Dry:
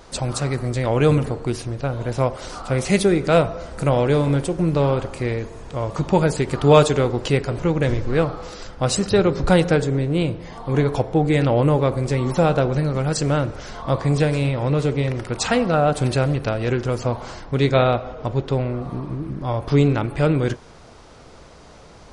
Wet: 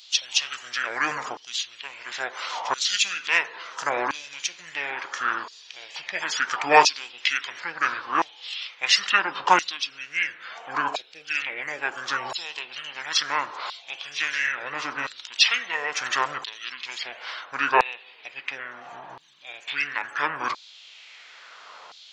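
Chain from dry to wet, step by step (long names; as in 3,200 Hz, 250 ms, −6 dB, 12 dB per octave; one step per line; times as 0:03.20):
formants moved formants −6 semitones
auto-filter high-pass saw down 0.73 Hz 950–4,100 Hz
level +4 dB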